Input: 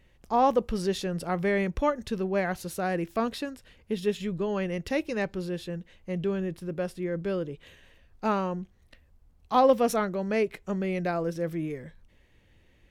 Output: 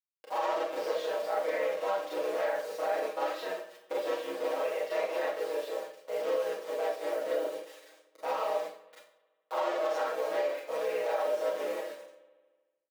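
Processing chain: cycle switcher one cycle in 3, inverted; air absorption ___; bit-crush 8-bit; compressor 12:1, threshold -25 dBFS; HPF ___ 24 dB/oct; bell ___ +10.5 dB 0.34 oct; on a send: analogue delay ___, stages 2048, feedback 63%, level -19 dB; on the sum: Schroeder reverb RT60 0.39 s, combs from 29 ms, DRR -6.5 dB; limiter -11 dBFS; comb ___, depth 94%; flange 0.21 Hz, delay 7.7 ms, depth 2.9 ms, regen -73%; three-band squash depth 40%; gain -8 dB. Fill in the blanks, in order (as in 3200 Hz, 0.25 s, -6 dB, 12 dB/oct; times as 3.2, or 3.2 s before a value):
120 m, 390 Hz, 570 Hz, 75 ms, 6.3 ms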